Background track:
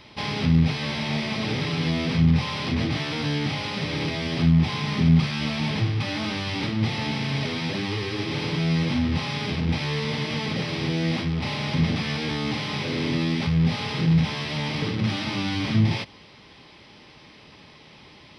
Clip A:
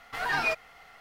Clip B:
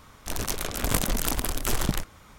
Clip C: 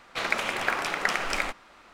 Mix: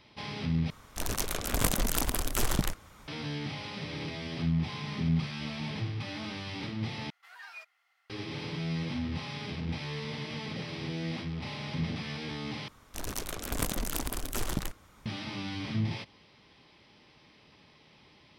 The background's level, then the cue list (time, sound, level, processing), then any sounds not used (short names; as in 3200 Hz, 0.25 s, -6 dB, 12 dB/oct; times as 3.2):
background track -10.5 dB
0.7 replace with B -2.5 dB
7.1 replace with A -18 dB + HPF 1200 Hz
12.68 replace with B -7 dB + bell 300 Hz +2.5 dB
not used: C